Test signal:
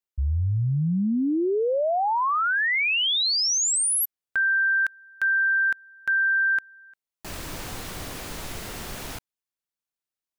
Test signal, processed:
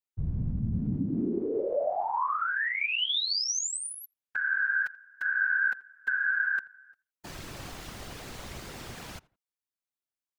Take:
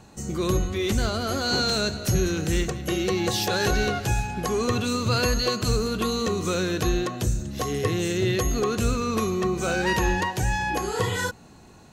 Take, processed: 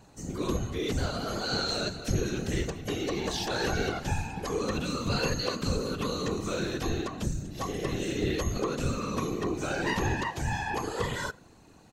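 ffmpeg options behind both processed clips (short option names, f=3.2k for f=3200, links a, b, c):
-filter_complex "[0:a]acrossover=split=7700[a][b];[b]acompressor=threshold=-47dB:ratio=4:attack=1:release=60[c];[a][c]amix=inputs=2:normalize=0,asplit=2[d][e];[e]adelay=84,lowpass=f=2.3k:p=1,volume=-22.5dB,asplit=2[f][g];[g]adelay=84,lowpass=f=2.3k:p=1,volume=0.27[h];[d][f][h]amix=inputs=3:normalize=0,afftfilt=real='hypot(re,im)*cos(2*PI*random(0))':imag='hypot(re,im)*sin(2*PI*random(1))':win_size=512:overlap=0.75"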